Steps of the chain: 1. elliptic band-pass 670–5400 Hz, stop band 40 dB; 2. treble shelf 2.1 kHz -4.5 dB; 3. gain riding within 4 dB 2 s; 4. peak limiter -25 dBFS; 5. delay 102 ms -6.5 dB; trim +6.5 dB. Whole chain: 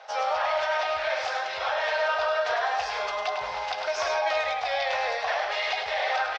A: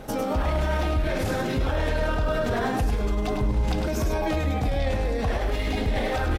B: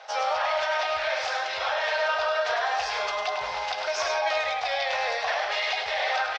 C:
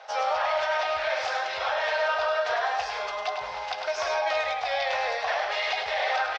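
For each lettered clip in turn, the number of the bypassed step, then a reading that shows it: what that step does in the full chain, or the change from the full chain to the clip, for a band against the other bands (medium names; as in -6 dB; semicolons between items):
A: 1, 500 Hz band +5.5 dB; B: 2, 4 kHz band +2.5 dB; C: 3, momentary loudness spread change +1 LU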